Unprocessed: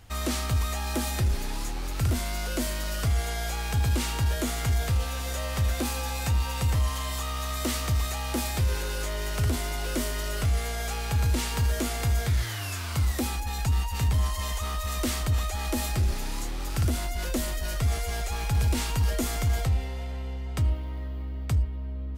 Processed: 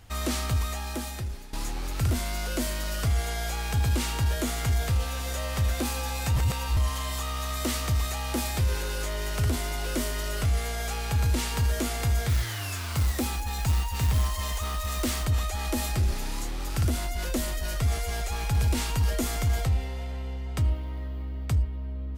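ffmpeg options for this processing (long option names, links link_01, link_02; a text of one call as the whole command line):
ffmpeg -i in.wav -filter_complex "[0:a]asettb=1/sr,asplit=3[link_01][link_02][link_03];[link_01]atrim=end=12.294[link_04];[link_02]atrim=start=12.29:end=15.25,asetpts=PTS-STARTPTS,afade=type=in:duration=0.004:curve=qsin,afade=type=out:start_time=2.956:duration=0.004:curve=qsin,acrusher=bits=4:mode=log:mix=0:aa=0.000001[link_05];[link_03]atrim=start=15.246[link_06];[link_04][link_05]acrossfade=duration=0.004:curve1=hsin:curve2=qsin[link_07];[link_07][link_06]acrossfade=duration=0.004:curve1=qsin:curve2=hsin,asplit=4[link_08][link_09][link_10][link_11];[link_08]atrim=end=1.53,asetpts=PTS-STARTPTS,afade=type=out:start_time=0.48:duration=1.05:silence=0.16788[link_12];[link_09]atrim=start=1.53:end=6.362,asetpts=PTS-STARTPTS,afade=type=in:duration=0.004:curve=hsin:silence=0.16788[link_13];[link_10]atrim=start=6.358:end=6.772,asetpts=PTS-STARTPTS,areverse[link_14];[link_11]atrim=start=6.768[link_15];[link_12][link_13]concat=n=2:v=0:a=1[link_16];[link_16][link_14]acrossfade=duration=0.004:curve1=hsin:curve2=hsin[link_17];[link_17][link_15]acrossfade=duration=0.004:curve1=hsin:curve2=hsin" out.wav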